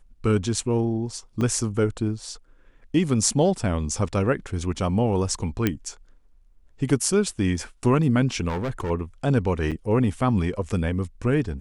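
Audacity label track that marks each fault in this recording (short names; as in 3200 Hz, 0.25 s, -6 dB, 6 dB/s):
1.410000	1.410000	gap 4.1 ms
5.670000	5.670000	pop -8 dBFS
8.480000	8.910000	clipped -24 dBFS
9.710000	9.720000	gap 7 ms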